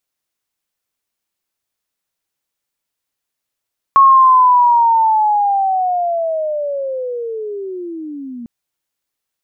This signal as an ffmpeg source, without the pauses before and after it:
ffmpeg -f lavfi -i "aevalsrc='pow(10,(-4-22*t/4.5)/20)*sin(2*PI*(1100*t-870*t*t/(2*4.5)))':duration=4.5:sample_rate=44100" out.wav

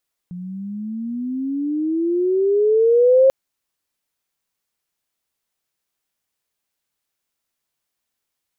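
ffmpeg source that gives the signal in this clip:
ffmpeg -f lavfi -i "aevalsrc='pow(10,(-8.5+20*(t/2.99-1))/20)*sin(2*PI*175*2.99/(19.5*log(2)/12)*(exp(19.5*log(2)/12*t/2.99)-1))':duration=2.99:sample_rate=44100" out.wav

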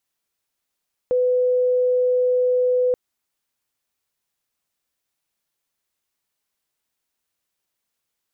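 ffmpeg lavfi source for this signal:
ffmpeg -f lavfi -i "sine=frequency=500:duration=1.83:sample_rate=44100,volume=2.56dB" out.wav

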